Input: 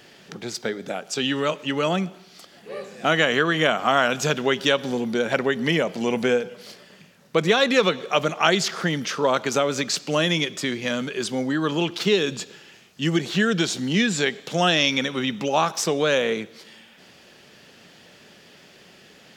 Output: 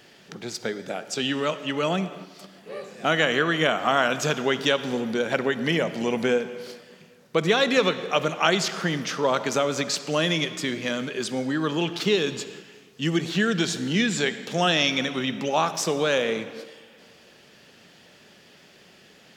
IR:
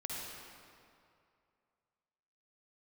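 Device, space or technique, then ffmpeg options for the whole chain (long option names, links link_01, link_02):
keyed gated reverb: -filter_complex "[0:a]asplit=3[link_01][link_02][link_03];[1:a]atrim=start_sample=2205[link_04];[link_02][link_04]afir=irnorm=-1:irlink=0[link_05];[link_03]apad=whole_len=854036[link_06];[link_05][link_06]sidechaingate=range=-6dB:threshold=-45dB:ratio=16:detection=peak,volume=-11dB[link_07];[link_01][link_07]amix=inputs=2:normalize=0,volume=-3.5dB"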